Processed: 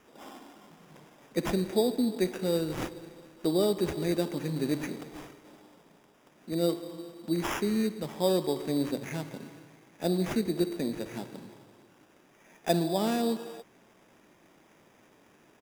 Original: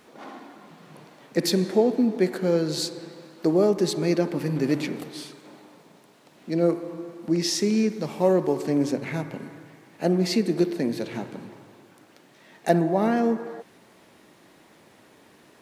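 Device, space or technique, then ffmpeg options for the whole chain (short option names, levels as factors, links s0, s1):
crushed at another speed: -af "asetrate=35280,aresample=44100,acrusher=samples=13:mix=1:aa=0.000001,asetrate=55125,aresample=44100,volume=0.501"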